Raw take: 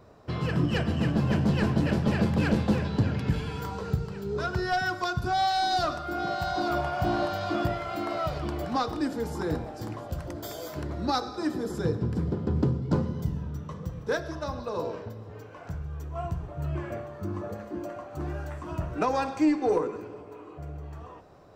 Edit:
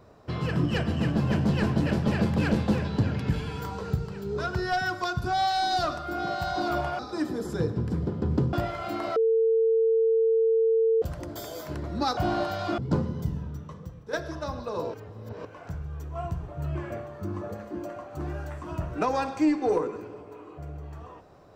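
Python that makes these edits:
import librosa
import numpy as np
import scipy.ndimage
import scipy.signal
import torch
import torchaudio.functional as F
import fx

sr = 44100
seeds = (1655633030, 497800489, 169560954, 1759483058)

y = fx.edit(x, sr, fx.swap(start_s=6.99, length_s=0.61, other_s=11.24, other_length_s=1.54),
    fx.bleep(start_s=8.23, length_s=1.86, hz=450.0, db=-19.0),
    fx.fade_out_to(start_s=13.36, length_s=0.77, floor_db=-11.0),
    fx.reverse_span(start_s=14.94, length_s=0.51), tone=tone)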